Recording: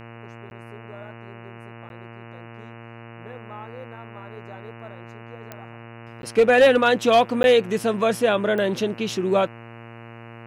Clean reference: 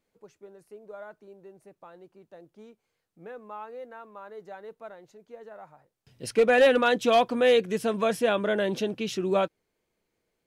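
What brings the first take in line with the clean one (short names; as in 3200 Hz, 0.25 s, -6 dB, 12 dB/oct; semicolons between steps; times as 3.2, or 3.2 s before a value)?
de-click; de-hum 116 Hz, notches 25; interpolate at 0.5/1.89/6.22/7.43, 11 ms; gain correction -4.5 dB, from 6.33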